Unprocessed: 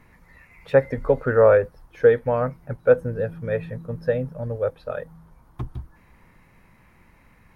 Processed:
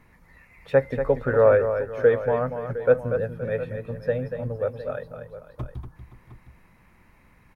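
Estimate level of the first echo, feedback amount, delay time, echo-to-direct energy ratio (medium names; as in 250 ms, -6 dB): -8.5 dB, no regular repeats, 238 ms, -7.0 dB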